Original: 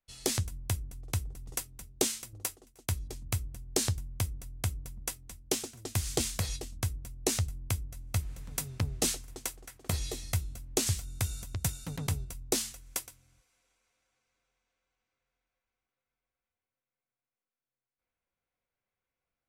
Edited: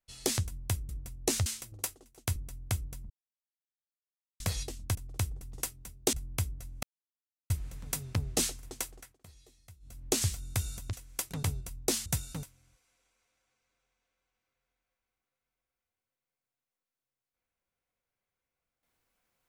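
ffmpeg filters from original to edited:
ffmpeg -i in.wav -filter_complex "[0:a]asplit=15[link_01][link_02][link_03][link_04][link_05][link_06][link_07][link_08][link_09][link_10][link_11][link_12][link_13][link_14][link_15];[link_01]atrim=end=0.892[link_16];[link_02]atrim=start=6.878:end=7.452[link_17];[link_03]atrim=start=2.068:end=2.972[link_18];[link_04]atrim=start=4.288:end=5.03,asetpts=PTS-STARTPTS,afade=type=out:start_time=0.738:duration=0.004:curve=hsin[link_19];[link_05]atrim=start=5.03:end=6.33,asetpts=PTS-STARTPTS,volume=0[link_20];[link_06]atrim=start=6.33:end=6.882,asetpts=PTS-STARTPTS,afade=type=in:duration=0.004:curve=hsin[link_21];[link_07]atrim=start=0.888:end=2.072[link_22];[link_08]atrim=start=7.448:end=8.15,asetpts=PTS-STARTPTS,afade=type=out:start_time=0.698:duration=0.004:curve=hsin,apad=pad_dur=0.67[link_23];[link_09]atrim=start=8.15:end=9.84,asetpts=PTS-STARTPTS,afade=type=in:duration=0.004:curve=hsin,afade=type=out:start_time=1.45:duration=0.24:silence=0.0668344[link_24];[link_10]atrim=start=9.84:end=10.45,asetpts=PTS-STARTPTS,volume=-23.5dB[link_25];[link_11]atrim=start=10.45:end=11.582,asetpts=PTS-STARTPTS,afade=type=in:duration=0.24:silence=0.0668344[link_26];[link_12]atrim=start=12.698:end=13.082[link_27];[link_13]atrim=start=11.948:end=12.702[link_28];[link_14]atrim=start=11.578:end=11.952[link_29];[link_15]atrim=start=13.078[link_30];[link_16][link_17]acrossfade=duration=0.004:curve1=hsin:curve2=hsin[link_31];[link_31][link_18]acrossfade=duration=0.004:curve1=hsin:curve2=hsin[link_32];[link_19][link_20][link_21]concat=n=3:v=0:a=1[link_33];[link_32][link_33]acrossfade=duration=0.004:curve1=hsin:curve2=hsin[link_34];[link_34][link_22]acrossfade=duration=0.004:curve1=hsin:curve2=hsin[link_35];[link_23][link_24][link_25][link_26]concat=n=4:v=0:a=1[link_36];[link_35][link_36]acrossfade=duration=0.004:curve1=hsin:curve2=hsin[link_37];[link_37][link_27]acrossfade=duration=0.004:curve1=hsin:curve2=hsin[link_38];[link_38][link_28]acrossfade=duration=0.004:curve1=hsin:curve2=hsin[link_39];[link_39][link_29]acrossfade=duration=0.004:curve1=hsin:curve2=hsin[link_40];[link_40][link_30]acrossfade=duration=0.004:curve1=hsin:curve2=hsin" out.wav

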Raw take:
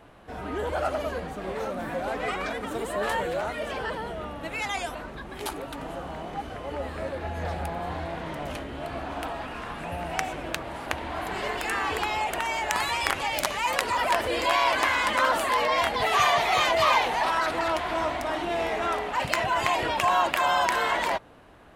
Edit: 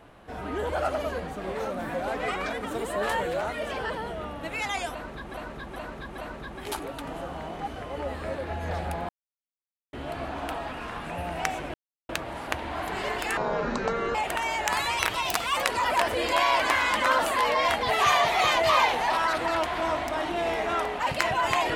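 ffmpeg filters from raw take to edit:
ffmpeg -i in.wav -filter_complex "[0:a]asplit=11[link_01][link_02][link_03][link_04][link_05][link_06][link_07][link_08][link_09][link_10][link_11];[link_01]atrim=end=5.342[link_12];[link_02]atrim=start=4.918:end=5.342[link_13];[link_03]atrim=start=4.918:end=5.342[link_14];[link_04]atrim=start=4.918:end=7.83,asetpts=PTS-STARTPTS,afade=type=out:start_time=2.908:duration=0.004:curve=hsin[link_15];[link_05]atrim=start=7.83:end=8.67,asetpts=PTS-STARTPTS,volume=0[link_16];[link_06]atrim=start=8.67:end=10.48,asetpts=PTS-STARTPTS,afade=type=in:duration=0.004:curve=hsin,afade=type=out:start_time=1.806:duration=0.004:curve=hsin,apad=pad_dur=0.35[link_17];[link_07]atrim=start=10.48:end=11.764,asetpts=PTS-STARTPTS,afade=type=in:duration=0.004:curve=hsin[link_18];[link_08]atrim=start=11.76:end=12.18,asetpts=PTS-STARTPTS,asetrate=23814,aresample=44100[link_19];[link_09]atrim=start=12.176:end=13.024[link_20];[link_10]atrim=start=13.02:end=13.7,asetpts=PTS-STARTPTS,asetrate=51597,aresample=44100[link_21];[link_11]atrim=start=13.696[link_22];[link_12][link_13]acrossfade=duration=0.004:curve1=hsin:curve2=hsin[link_23];[link_23][link_14]acrossfade=duration=0.004:curve1=hsin:curve2=hsin[link_24];[link_15][link_16][link_17][link_18]concat=n=4:v=0:a=1[link_25];[link_24][link_25]acrossfade=duration=0.004:curve1=hsin:curve2=hsin[link_26];[link_26][link_19]acrossfade=duration=0.004:curve1=hsin:curve2=hsin[link_27];[link_27][link_20]acrossfade=duration=0.004:curve1=hsin:curve2=hsin[link_28];[link_28][link_21]acrossfade=duration=0.004:curve1=hsin:curve2=hsin[link_29];[link_29][link_22]acrossfade=duration=0.004:curve1=hsin:curve2=hsin" out.wav

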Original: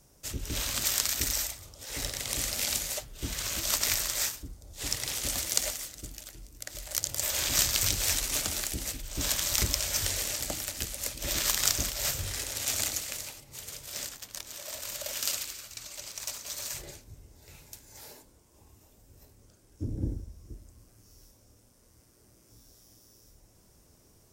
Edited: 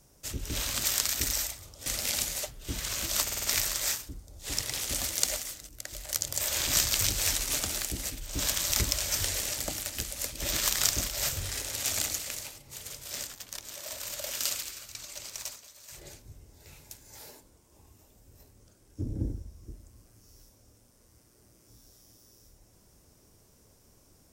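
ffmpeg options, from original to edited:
ffmpeg -i in.wav -filter_complex "[0:a]asplit=9[link_01][link_02][link_03][link_04][link_05][link_06][link_07][link_08][link_09];[link_01]atrim=end=1.862[link_10];[link_02]atrim=start=2.398:end=3.822[link_11];[link_03]atrim=start=3.768:end=3.822[link_12];[link_04]atrim=start=3.768:end=3.822[link_13];[link_05]atrim=start=3.768:end=3.822[link_14];[link_06]atrim=start=3.768:end=6.032[link_15];[link_07]atrim=start=6.508:end=16.51,asetpts=PTS-STARTPTS,afade=type=out:start_time=9.692:duration=0.31:silence=0.16788[link_16];[link_08]atrim=start=16.51:end=16.67,asetpts=PTS-STARTPTS,volume=-15.5dB[link_17];[link_09]atrim=start=16.67,asetpts=PTS-STARTPTS,afade=type=in:duration=0.31:silence=0.16788[link_18];[link_10][link_11]acrossfade=duration=0.004:curve1=hsin:curve2=hsin[link_19];[link_19][link_12]acrossfade=duration=0.004:curve1=hsin:curve2=hsin[link_20];[link_20][link_13]acrossfade=duration=0.004:curve1=hsin:curve2=hsin[link_21];[link_21][link_14]acrossfade=duration=0.004:curve1=hsin:curve2=hsin[link_22];[link_22][link_15]acrossfade=duration=0.004:curve1=hsin:curve2=hsin[link_23];[link_16][link_17][link_18]concat=n=3:v=0:a=1[link_24];[link_23][link_24]acrossfade=duration=0.004:curve1=hsin:curve2=hsin" out.wav

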